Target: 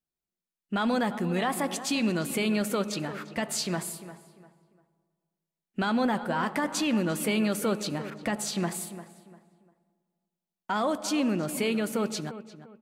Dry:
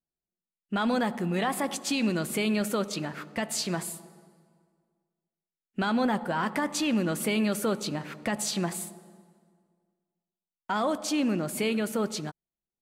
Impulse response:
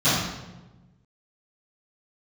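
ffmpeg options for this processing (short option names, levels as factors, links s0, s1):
-filter_complex "[0:a]asplit=2[s0][s1];[s1]adelay=348,lowpass=f=2300:p=1,volume=0.224,asplit=2[s2][s3];[s3]adelay=348,lowpass=f=2300:p=1,volume=0.31,asplit=2[s4][s5];[s5]adelay=348,lowpass=f=2300:p=1,volume=0.31[s6];[s0][s2][s4][s6]amix=inputs=4:normalize=0,asettb=1/sr,asplit=3[s7][s8][s9];[s7]atrim=end=8.104[s10];[s8]atrim=start=8.1:end=8.58,asetpts=PTS-STARTPTS,afade=t=in:d=0.004:c=qsin,afade=t=out:st=0.476:d=0.004:c=qsin,adynamicequalizer=threshold=0.00501:dfrequency=1900:dqfactor=0.7:tfrequency=1900:tqfactor=0.7:attack=5:release=100:ratio=0.375:range=2.5:mode=cutabove:tftype=highshelf[s11];[s9]atrim=start=8.576[s12];[s10][s11]acrossfade=d=0.004:c1=hsin:c2=qsin[s13];[s13][s12]acrossfade=d=0.004:c1=qsin:c2=hsin"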